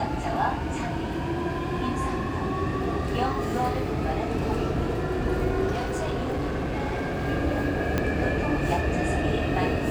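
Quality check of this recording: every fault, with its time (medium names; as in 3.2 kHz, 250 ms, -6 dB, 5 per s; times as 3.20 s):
5.72–7.27 s: clipped -24.5 dBFS
7.98 s: pop -10 dBFS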